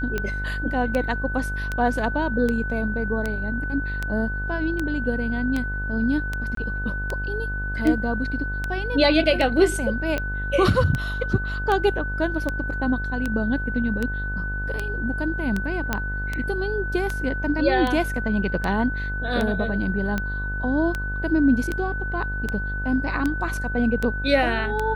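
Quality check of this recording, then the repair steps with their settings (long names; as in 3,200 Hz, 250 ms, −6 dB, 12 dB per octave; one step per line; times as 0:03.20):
mains buzz 50 Hz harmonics 32 −29 dBFS
scratch tick 78 rpm −12 dBFS
whistle 1,500 Hz −29 dBFS
0:06.55–0:06.57: drop-out 23 ms
0:15.93: click −8 dBFS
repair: click removal
hum removal 50 Hz, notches 32
notch filter 1,500 Hz, Q 30
repair the gap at 0:06.55, 23 ms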